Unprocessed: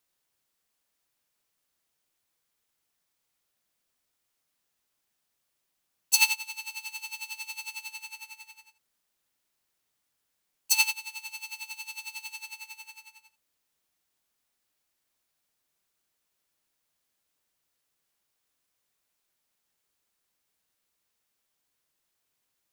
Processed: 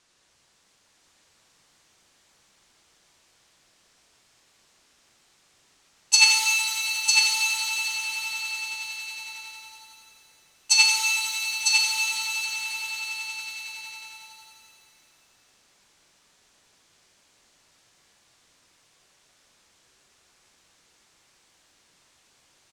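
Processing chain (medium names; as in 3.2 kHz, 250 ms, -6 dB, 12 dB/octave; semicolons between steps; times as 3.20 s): companding laws mixed up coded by mu; low-pass 8 kHz 24 dB/octave; on a send: delay 952 ms -3.5 dB; on the sum: pitch-shifted reverb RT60 2.5 s, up +7 st, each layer -8 dB, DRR 0.5 dB; trim +5.5 dB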